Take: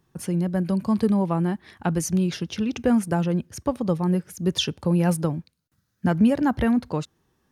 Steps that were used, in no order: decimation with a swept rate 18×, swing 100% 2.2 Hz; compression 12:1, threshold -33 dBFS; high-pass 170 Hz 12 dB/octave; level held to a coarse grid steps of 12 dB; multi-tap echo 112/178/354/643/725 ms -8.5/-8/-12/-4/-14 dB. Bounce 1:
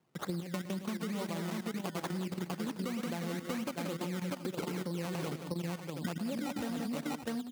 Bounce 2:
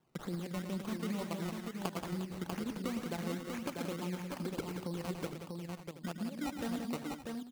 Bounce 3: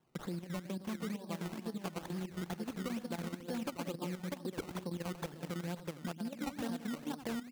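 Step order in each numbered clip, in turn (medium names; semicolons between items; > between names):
decimation with a swept rate > multi-tap echo > level held to a coarse grid > high-pass > compression; compression > level held to a coarse grid > high-pass > decimation with a swept rate > multi-tap echo; multi-tap echo > compression > level held to a coarse grid > high-pass > decimation with a swept rate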